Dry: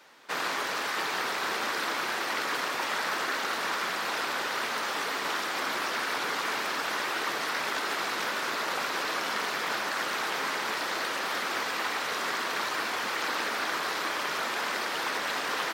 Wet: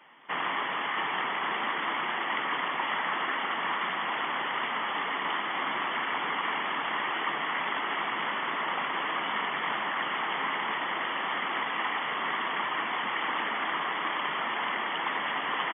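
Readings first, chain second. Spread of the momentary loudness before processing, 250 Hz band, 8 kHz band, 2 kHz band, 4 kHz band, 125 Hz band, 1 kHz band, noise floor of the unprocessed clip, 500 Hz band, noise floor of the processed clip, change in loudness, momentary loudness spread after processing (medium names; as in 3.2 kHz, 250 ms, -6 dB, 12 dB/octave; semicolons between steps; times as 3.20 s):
1 LU, 0.0 dB, under -40 dB, 0.0 dB, -2.0 dB, +1.5 dB, +1.5 dB, -33 dBFS, -3.0 dB, -33 dBFS, 0.0 dB, 1 LU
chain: FFT band-pass 120–3500 Hz; comb 1 ms, depth 44%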